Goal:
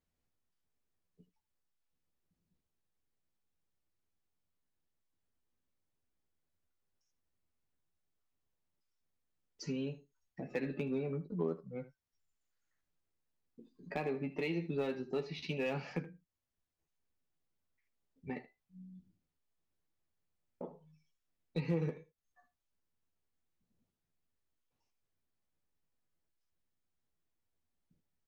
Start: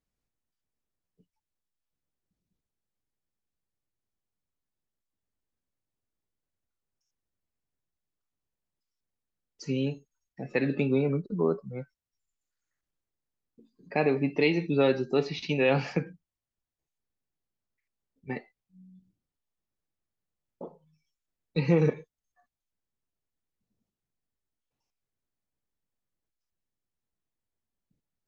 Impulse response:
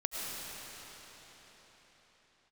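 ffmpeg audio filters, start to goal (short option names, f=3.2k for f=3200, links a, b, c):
-filter_complex "[0:a]highshelf=f=5.1k:g=-6,acompressor=threshold=-46dB:ratio=2,aeval=exprs='0.0355*(cos(1*acos(clip(val(0)/0.0355,-1,1)))-cos(1*PI/2))+0.000562*(cos(7*acos(clip(val(0)/0.0355,-1,1)))-cos(7*PI/2))':c=same,asplit=2[a][b];[b]aecho=0:1:12|78:0.473|0.158[c];[a][c]amix=inputs=2:normalize=0,volume=1dB"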